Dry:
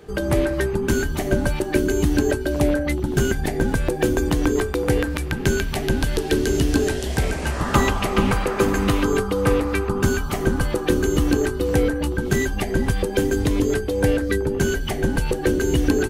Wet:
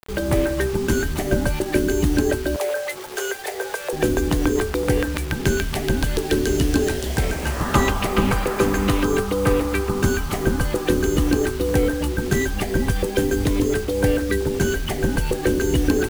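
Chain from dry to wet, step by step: 2.56–3.93 steep high-pass 400 Hz 72 dB/oct; bit-crush 6-bit

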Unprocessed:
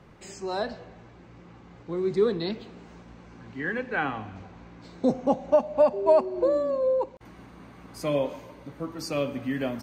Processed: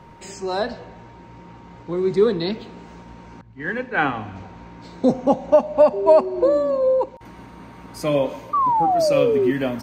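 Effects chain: 8.53–9.51 painted sound fall 350–1200 Hz -24 dBFS; whine 930 Hz -53 dBFS; 3.41–4.13 three-band expander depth 100%; gain +6 dB

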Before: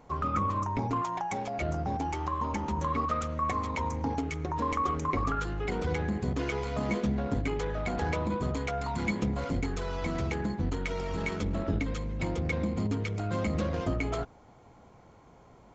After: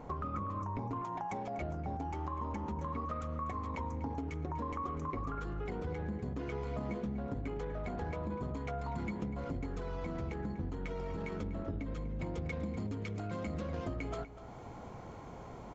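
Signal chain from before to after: high shelf 2000 Hz -11 dB, from 12.34 s -3 dB; compressor 4:1, threshold -47 dBFS, peak gain reduction 19 dB; outdoor echo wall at 42 m, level -13 dB; gain +8 dB

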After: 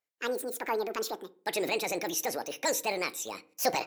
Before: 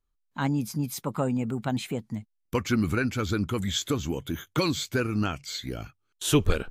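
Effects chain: HPF 290 Hz 12 dB/oct; transient shaper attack -5 dB, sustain +3 dB; reverb RT60 0.70 s, pre-delay 3 ms, DRR 14.5 dB; speed mistake 45 rpm record played at 78 rpm

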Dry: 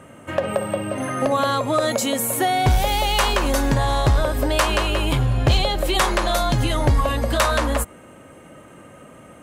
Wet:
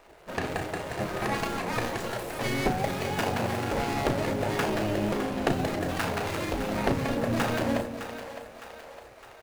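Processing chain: median filter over 41 samples; doubler 34 ms -8.5 dB; in parallel at -1.5 dB: limiter -18.5 dBFS, peak gain reduction 10 dB; on the sum: spectral gate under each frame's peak -10 dB weak; split-band echo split 490 Hz, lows 0.217 s, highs 0.61 s, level -10 dB; gain -3 dB

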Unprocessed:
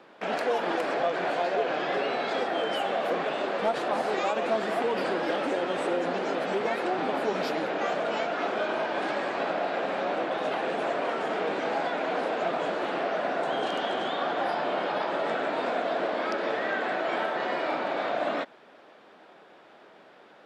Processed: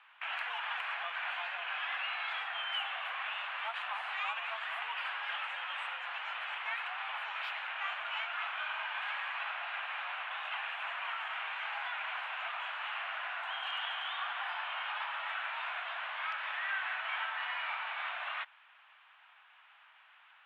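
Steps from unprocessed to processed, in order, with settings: steep high-pass 930 Hz 36 dB/oct; resonant high shelf 3900 Hz -11 dB, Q 3; gain -5.5 dB

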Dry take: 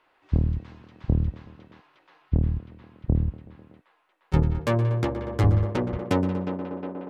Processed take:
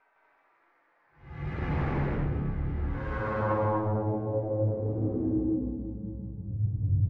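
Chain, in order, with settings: median filter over 15 samples; Doppler pass-by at 2.45, 29 m/s, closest 3.3 m; high shelf 4700 Hz +10.5 dB; in parallel at +2.5 dB: compressor, threshold -45 dBFS, peak gain reduction 18.5 dB; on the sum: Paulstretch 4.4×, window 0.25 s, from 3.87; sine folder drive 11 dB, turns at -26.5 dBFS; on a send: loudspeakers at several distances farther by 42 m -12 dB, 54 m -1 dB, 83 m -1 dB; on the sum: low-pass sweep 2000 Hz -> 130 Hz, 2.8–6.65; gain -3.5 dB

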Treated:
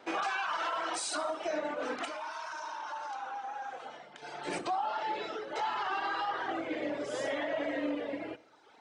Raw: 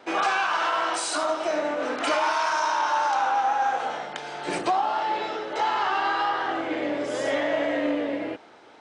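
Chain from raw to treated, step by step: reverb removal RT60 0.94 s; limiter -20 dBFS, peak gain reduction 6 dB; 2.05–4.22 resonator 64 Hz, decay 1.7 s, harmonics all, mix 60%; reverb RT60 0.85 s, pre-delay 49 ms, DRR 18 dB; gain -5 dB

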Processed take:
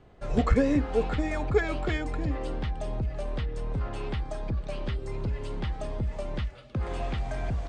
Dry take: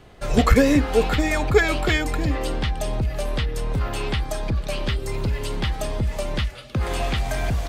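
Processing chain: steep low-pass 9100 Hz 36 dB/oct; high shelf 2100 Hz -11 dB; gain -6.5 dB

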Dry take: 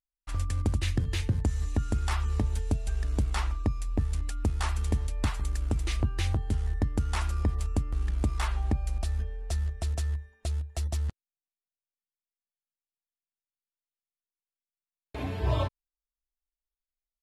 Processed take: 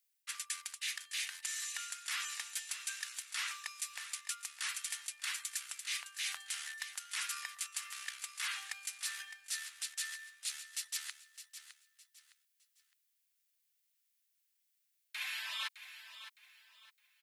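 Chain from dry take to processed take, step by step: inverse Chebyshev high-pass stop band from 380 Hz, stop band 70 dB; high shelf 9500 Hz +7.5 dB; reverse; compressor 10:1, threshold -48 dBFS, peak gain reduction 16 dB; reverse; feedback echo 0.611 s, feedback 30%, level -12 dB; gain +11.5 dB

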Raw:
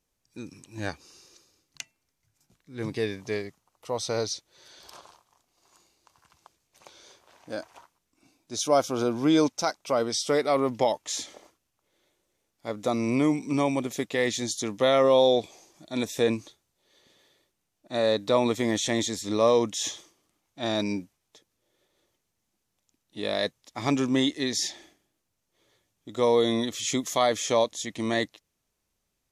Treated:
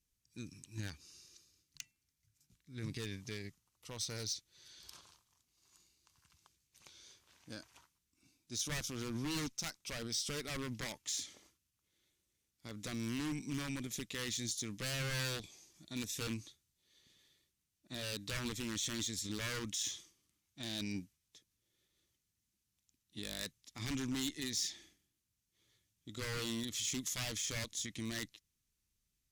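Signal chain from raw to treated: wavefolder -20 dBFS; limiter -26 dBFS, peak gain reduction 6 dB; added harmonics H 3 -19 dB, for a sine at -26 dBFS; passive tone stack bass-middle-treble 6-0-2; gain +14 dB

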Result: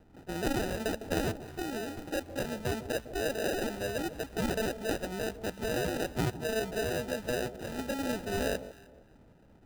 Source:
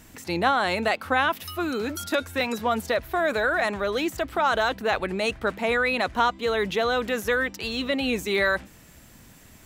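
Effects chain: sample-and-hold 40×; echo with dull and thin repeats by turns 0.154 s, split 1000 Hz, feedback 50%, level -13 dB; mismatched tape noise reduction decoder only; gain -8.5 dB

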